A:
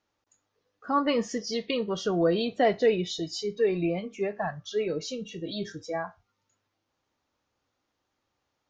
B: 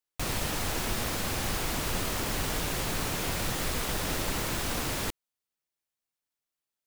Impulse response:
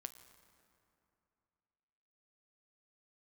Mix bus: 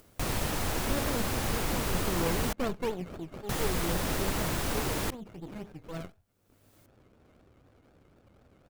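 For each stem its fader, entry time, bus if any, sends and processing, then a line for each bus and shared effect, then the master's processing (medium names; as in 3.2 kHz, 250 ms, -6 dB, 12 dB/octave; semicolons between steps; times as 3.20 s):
-5.0 dB, 0.00 s, no send, comb 1.4 ms, depth 32%; decimation with a swept rate 16×, swing 60% 4 Hz; sliding maximum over 33 samples
+1.5 dB, 0.00 s, muted 2.53–3.49 s, no send, treble shelf 5 kHz +7.5 dB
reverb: none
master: treble shelf 2.5 kHz -10 dB; upward compressor, threshold -39 dBFS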